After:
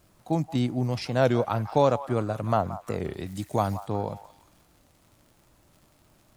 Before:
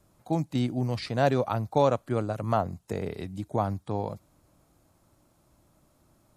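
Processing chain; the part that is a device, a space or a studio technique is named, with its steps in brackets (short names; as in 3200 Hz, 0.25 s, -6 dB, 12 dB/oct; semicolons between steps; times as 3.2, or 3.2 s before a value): warped LP (record warp 33 1/3 rpm, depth 160 cents; crackle 91/s -49 dBFS; pink noise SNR 39 dB); 3.26–3.87 high shelf 2800 Hz +12 dB; delay with a stepping band-pass 0.175 s, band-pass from 950 Hz, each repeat 0.7 oct, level -11.5 dB; gain +1.5 dB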